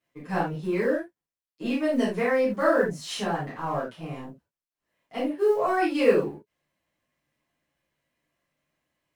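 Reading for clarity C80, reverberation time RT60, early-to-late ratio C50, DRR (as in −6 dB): 12.0 dB, non-exponential decay, 4.5 dB, −10.5 dB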